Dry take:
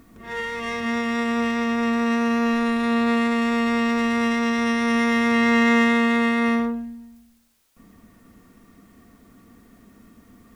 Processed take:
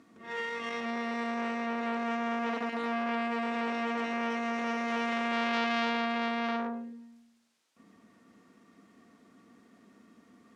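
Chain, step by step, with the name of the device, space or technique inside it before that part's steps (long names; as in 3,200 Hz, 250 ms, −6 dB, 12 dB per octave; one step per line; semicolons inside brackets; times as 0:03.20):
public-address speaker with an overloaded transformer (saturating transformer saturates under 1,900 Hz; band-pass filter 210–6,900 Hz)
level −5.5 dB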